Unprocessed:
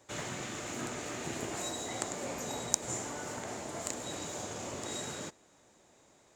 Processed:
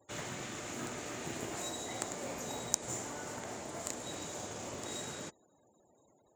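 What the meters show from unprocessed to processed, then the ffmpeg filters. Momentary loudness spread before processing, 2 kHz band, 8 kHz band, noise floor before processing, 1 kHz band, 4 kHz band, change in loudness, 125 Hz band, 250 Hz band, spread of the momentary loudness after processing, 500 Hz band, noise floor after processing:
7 LU, -2.5 dB, -2.5 dB, -64 dBFS, -2.5 dB, -2.5 dB, -2.5 dB, -2.5 dB, -2.5 dB, 7 LU, -2.5 dB, -69 dBFS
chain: -af "acrusher=bits=4:mode=log:mix=0:aa=0.000001,afftfilt=real='re*gte(hypot(re,im),0.00112)':imag='im*gte(hypot(re,im),0.00112)':win_size=1024:overlap=0.75,volume=0.75"

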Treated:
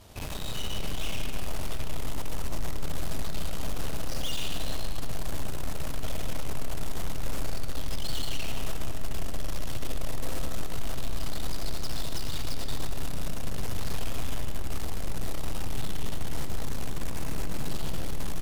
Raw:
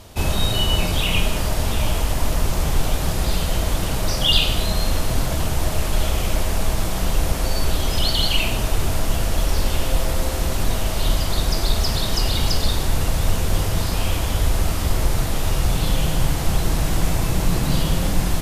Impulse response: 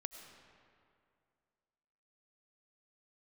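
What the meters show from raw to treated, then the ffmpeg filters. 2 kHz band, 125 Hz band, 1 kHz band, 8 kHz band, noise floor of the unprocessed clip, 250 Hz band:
-13.5 dB, -14.5 dB, -13.5 dB, -12.5 dB, -24 dBFS, -12.5 dB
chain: -filter_complex "[0:a]aeval=exprs='(tanh(31.6*val(0)+0.75)-tanh(0.75))/31.6':c=same,asplit=7[s0][s1][s2][s3][s4][s5][s6];[s1]adelay=111,afreqshift=130,volume=0.158[s7];[s2]adelay=222,afreqshift=260,volume=0.0933[s8];[s3]adelay=333,afreqshift=390,volume=0.055[s9];[s4]adelay=444,afreqshift=520,volume=0.0327[s10];[s5]adelay=555,afreqshift=650,volume=0.0193[s11];[s6]adelay=666,afreqshift=780,volume=0.0114[s12];[s0][s7][s8][s9][s10][s11][s12]amix=inputs=7:normalize=0[s13];[1:a]atrim=start_sample=2205[s14];[s13][s14]afir=irnorm=-1:irlink=0"

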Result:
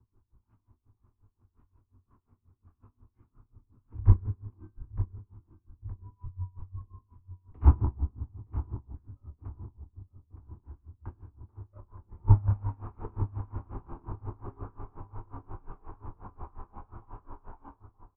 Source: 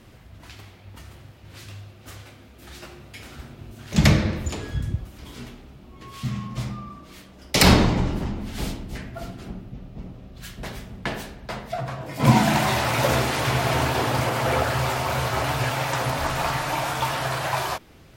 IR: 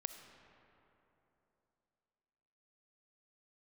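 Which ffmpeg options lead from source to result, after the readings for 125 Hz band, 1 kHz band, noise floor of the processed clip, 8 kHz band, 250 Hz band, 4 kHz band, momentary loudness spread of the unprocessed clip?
-5.5 dB, -21.5 dB, -78 dBFS, under -40 dB, -19.5 dB, under -40 dB, 23 LU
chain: -filter_complex "[0:a]aeval=exprs='0.794*(cos(1*acos(clip(val(0)/0.794,-1,1)))-cos(1*PI/2))+0.0794*(cos(3*acos(clip(val(0)/0.794,-1,1)))-cos(3*PI/2))+0.0398*(cos(7*acos(clip(val(0)/0.794,-1,1)))-cos(7*PI/2))':c=same,firequalizer=gain_entry='entry(460,0);entry(660,-20);entry(1100,-2);entry(2000,-30)':delay=0.05:min_phase=1,flanger=delay=22.5:depth=6:speed=0.12,highpass=f=150:t=q:w=0.5412,highpass=f=150:t=q:w=1.307,lowpass=f=2700:t=q:w=0.5176,lowpass=f=2700:t=q:w=0.7071,lowpass=f=2700:t=q:w=1.932,afreqshift=-110,lowshelf=f=120:t=q:w=3:g=7.5,asplit=2[s0][s1];[s1]adelay=918,lowpass=f=2000:p=1,volume=0.282,asplit=2[s2][s3];[s3]adelay=918,lowpass=f=2000:p=1,volume=0.53,asplit=2[s4][s5];[s5]adelay=918,lowpass=f=2000:p=1,volume=0.53,asplit=2[s6][s7];[s7]adelay=918,lowpass=f=2000:p=1,volume=0.53,asplit=2[s8][s9];[s9]adelay=918,lowpass=f=2000:p=1,volume=0.53,asplit=2[s10][s11];[s11]adelay=918,lowpass=f=2000:p=1,volume=0.53[s12];[s0][s2][s4][s6][s8][s10][s12]amix=inputs=7:normalize=0,aeval=exprs='val(0)*pow(10,-24*(0.5-0.5*cos(2*PI*5.6*n/s))/20)':c=same"

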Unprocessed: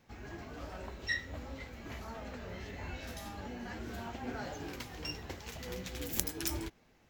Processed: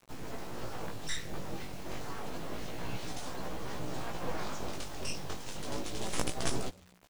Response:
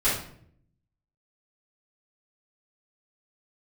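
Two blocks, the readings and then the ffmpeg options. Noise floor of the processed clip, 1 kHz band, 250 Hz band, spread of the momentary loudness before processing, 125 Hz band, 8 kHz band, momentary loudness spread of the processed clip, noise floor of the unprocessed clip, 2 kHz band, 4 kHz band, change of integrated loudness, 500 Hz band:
-57 dBFS, +5.0 dB, +2.0 dB, 10 LU, +2.0 dB, +2.0 dB, 7 LU, -66 dBFS, -2.5 dB, +3.0 dB, +1.0 dB, +4.0 dB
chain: -filter_complex "[0:a]equalizer=f=1800:t=o:w=1.2:g=-9,aeval=exprs='abs(val(0))':c=same,aresample=22050,aresample=44100,acrusher=bits=9:mix=0:aa=0.000001,asplit=2[s0][s1];[s1]asplit=2[s2][s3];[s2]adelay=123,afreqshift=-91,volume=0.0631[s4];[s3]adelay=246,afreqshift=-182,volume=0.0188[s5];[s4][s5]amix=inputs=2:normalize=0[s6];[s0][s6]amix=inputs=2:normalize=0,flanger=delay=15.5:depth=5.8:speed=0.29,asoftclip=type=hard:threshold=0.0631,volume=3.35"

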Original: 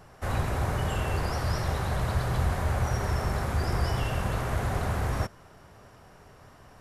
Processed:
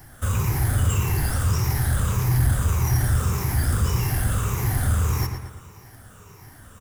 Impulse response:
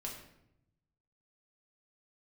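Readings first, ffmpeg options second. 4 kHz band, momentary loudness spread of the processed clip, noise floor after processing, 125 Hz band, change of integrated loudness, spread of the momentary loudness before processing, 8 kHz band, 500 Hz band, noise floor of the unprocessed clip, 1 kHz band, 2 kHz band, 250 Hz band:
+3.5 dB, 4 LU, -47 dBFS, +8.0 dB, +6.5 dB, 2 LU, +13.0 dB, -2.5 dB, -53 dBFS, -0.5 dB, +2.0 dB, +4.5 dB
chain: -filter_complex "[0:a]afftfilt=real='re*pow(10,12/40*sin(2*PI*(0.76*log(max(b,1)*sr/1024/100)/log(2)-(-1.7)*(pts-256)/sr)))':imag='im*pow(10,12/40*sin(2*PI*(0.76*log(max(b,1)*sr/1024/100)/log(2)-(-1.7)*(pts-256)/sr)))':win_size=1024:overlap=0.75,equalizer=f=100:t=o:w=0.67:g=6,equalizer=f=630:t=o:w=0.67:g=-10,equalizer=f=4000:t=o:w=0.67:g=-10,acrossover=split=260|3000[s0][s1][s2];[s1]acompressor=threshold=0.0141:ratio=2[s3];[s0][s3][s2]amix=inputs=3:normalize=0,asplit=2[s4][s5];[s5]acrusher=samples=9:mix=1:aa=0.000001,volume=0.355[s6];[s4][s6]amix=inputs=2:normalize=0,aemphasis=mode=production:type=75kf,asplit=2[s7][s8];[s8]adelay=114,lowpass=f=4300:p=1,volume=0.473,asplit=2[s9][s10];[s10]adelay=114,lowpass=f=4300:p=1,volume=0.49,asplit=2[s11][s12];[s12]adelay=114,lowpass=f=4300:p=1,volume=0.49,asplit=2[s13][s14];[s14]adelay=114,lowpass=f=4300:p=1,volume=0.49,asplit=2[s15][s16];[s16]adelay=114,lowpass=f=4300:p=1,volume=0.49,asplit=2[s17][s18];[s18]adelay=114,lowpass=f=4300:p=1,volume=0.49[s19];[s9][s11][s13][s15][s17][s19]amix=inputs=6:normalize=0[s20];[s7][s20]amix=inputs=2:normalize=0,asoftclip=type=tanh:threshold=0.282"

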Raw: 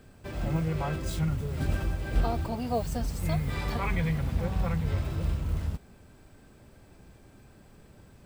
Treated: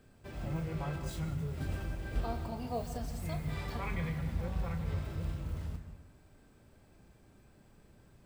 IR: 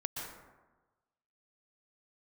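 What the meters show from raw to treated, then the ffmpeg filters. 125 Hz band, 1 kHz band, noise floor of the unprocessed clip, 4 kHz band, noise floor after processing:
-7.0 dB, -7.5 dB, -55 dBFS, -7.5 dB, -62 dBFS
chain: -filter_complex "[0:a]asplit=2[s0][s1];[1:a]atrim=start_sample=2205,asetrate=52920,aresample=44100,adelay=35[s2];[s1][s2]afir=irnorm=-1:irlink=0,volume=0.447[s3];[s0][s3]amix=inputs=2:normalize=0,volume=0.398"

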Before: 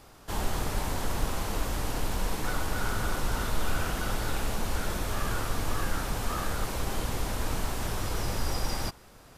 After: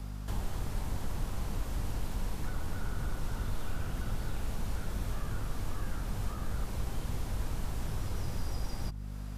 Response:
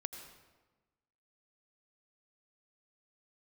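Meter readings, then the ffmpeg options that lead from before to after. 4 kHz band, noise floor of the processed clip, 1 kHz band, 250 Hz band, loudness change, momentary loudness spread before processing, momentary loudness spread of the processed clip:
-11.5 dB, -39 dBFS, -11.5 dB, -5.5 dB, -6.0 dB, 1 LU, 1 LU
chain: -filter_complex "[0:a]aeval=exprs='val(0)+0.0126*(sin(2*PI*50*n/s)+sin(2*PI*2*50*n/s)/2+sin(2*PI*3*50*n/s)/3+sin(2*PI*4*50*n/s)/4+sin(2*PI*5*50*n/s)/5)':c=same,acrossover=split=210|700[s0][s1][s2];[s0]acompressor=threshold=0.0355:ratio=4[s3];[s1]acompressor=threshold=0.00282:ratio=4[s4];[s2]acompressor=threshold=0.00355:ratio=4[s5];[s3][s4][s5]amix=inputs=3:normalize=0"

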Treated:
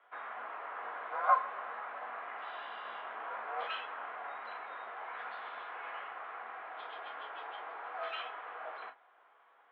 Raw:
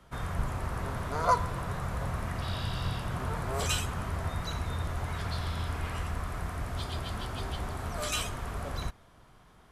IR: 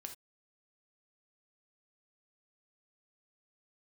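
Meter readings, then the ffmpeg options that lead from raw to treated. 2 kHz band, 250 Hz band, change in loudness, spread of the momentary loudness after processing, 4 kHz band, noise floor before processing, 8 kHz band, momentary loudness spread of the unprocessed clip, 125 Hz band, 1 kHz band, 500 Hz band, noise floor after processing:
-2.0 dB, -26.0 dB, -6.0 dB, 8 LU, -11.5 dB, -58 dBFS, under -40 dB, 6 LU, under -40 dB, -1.5 dB, -7.0 dB, -65 dBFS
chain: -filter_complex "[0:a]acrossover=split=530 2500:gain=0.141 1 0.158[s0][s1][s2];[s0][s1][s2]amix=inputs=3:normalize=0[s3];[1:a]atrim=start_sample=2205,asetrate=83790,aresample=44100[s4];[s3][s4]afir=irnorm=-1:irlink=0,highpass=f=280:t=q:w=0.5412,highpass=f=280:t=q:w=1.307,lowpass=f=3400:t=q:w=0.5176,lowpass=f=3400:t=q:w=0.7071,lowpass=f=3400:t=q:w=1.932,afreqshift=61,volume=2.82"

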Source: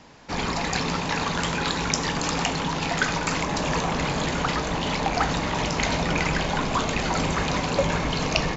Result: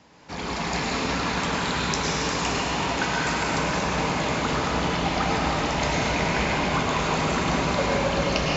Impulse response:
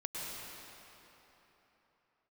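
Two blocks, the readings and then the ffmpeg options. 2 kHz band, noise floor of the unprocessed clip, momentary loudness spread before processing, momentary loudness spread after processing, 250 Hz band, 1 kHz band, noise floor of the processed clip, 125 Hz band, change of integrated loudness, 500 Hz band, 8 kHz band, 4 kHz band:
+0.5 dB, -29 dBFS, 2 LU, 2 LU, +0.5 dB, +1.0 dB, -31 dBFS, -0.5 dB, +0.5 dB, +1.5 dB, no reading, 0.0 dB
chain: -filter_complex "[0:a]highpass=46,flanger=delay=9.7:depth=3.5:regen=-72:speed=0.8:shape=triangular[s0];[1:a]atrim=start_sample=2205[s1];[s0][s1]afir=irnorm=-1:irlink=0,volume=1.41"

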